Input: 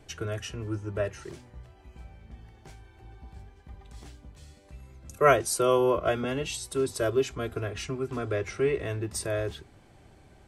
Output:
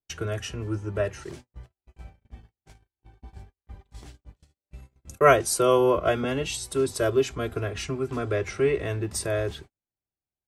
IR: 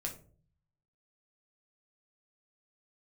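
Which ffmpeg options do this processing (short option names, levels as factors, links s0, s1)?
-af "agate=range=0.00501:threshold=0.00562:ratio=16:detection=peak,volume=1.41"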